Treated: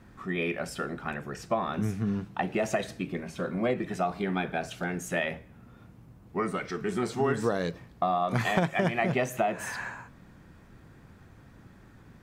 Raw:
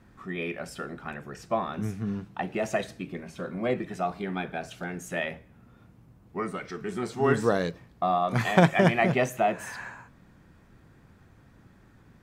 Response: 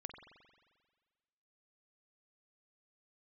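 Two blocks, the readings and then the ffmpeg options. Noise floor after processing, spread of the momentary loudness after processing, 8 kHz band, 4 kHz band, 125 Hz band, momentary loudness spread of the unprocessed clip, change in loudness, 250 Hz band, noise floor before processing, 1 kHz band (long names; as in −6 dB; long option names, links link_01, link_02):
−54 dBFS, 9 LU, +1.0 dB, −1.0 dB, −2.5 dB, 16 LU, −2.0 dB, −1.5 dB, −57 dBFS, −2.0 dB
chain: -af "acompressor=threshold=-26dB:ratio=6,volume=3dB"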